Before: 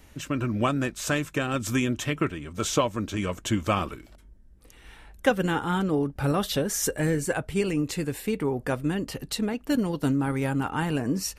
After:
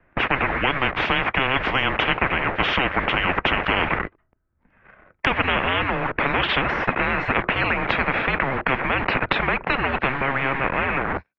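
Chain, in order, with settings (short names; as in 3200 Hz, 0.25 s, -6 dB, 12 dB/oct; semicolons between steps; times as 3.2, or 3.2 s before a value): ending faded out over 1.68 s; de-esser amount 60%; in parallel at -4 dB: bit-crush 7-bit; on the sum: mistuned SSB -270 Hz 220–2400 Hz; gate -43 dBFS, range -30 dB; maximiser +10.5 dB; spectral compressor 10:1; gain -1 dB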